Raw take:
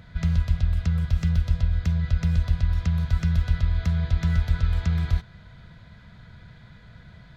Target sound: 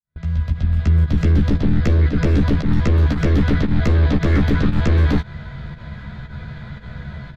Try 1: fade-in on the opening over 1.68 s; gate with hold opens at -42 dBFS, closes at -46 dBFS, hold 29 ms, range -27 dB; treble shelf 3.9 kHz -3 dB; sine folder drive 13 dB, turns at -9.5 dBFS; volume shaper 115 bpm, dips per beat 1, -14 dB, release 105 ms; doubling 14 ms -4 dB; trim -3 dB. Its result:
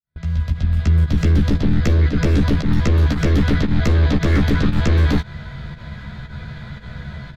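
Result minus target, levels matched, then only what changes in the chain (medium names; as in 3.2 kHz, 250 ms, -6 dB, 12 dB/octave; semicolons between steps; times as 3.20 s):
8 kHz band +6.0 dB
change: treble shelf 3.9 kHz -11 dB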